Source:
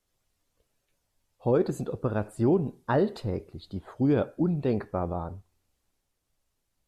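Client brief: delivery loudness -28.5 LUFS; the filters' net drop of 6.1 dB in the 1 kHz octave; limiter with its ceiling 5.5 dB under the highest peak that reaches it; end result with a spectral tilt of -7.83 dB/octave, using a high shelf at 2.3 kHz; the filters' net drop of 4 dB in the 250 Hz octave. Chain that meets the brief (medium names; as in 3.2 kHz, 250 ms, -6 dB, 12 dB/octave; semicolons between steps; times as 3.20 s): peaking EQ 250 Hz -5 dB; peaking EQ 1 kHz -7 dB; treble shelf 2.3 kHz -6 dB; trim +5.5 dB; peak limiter -16.5 dBFS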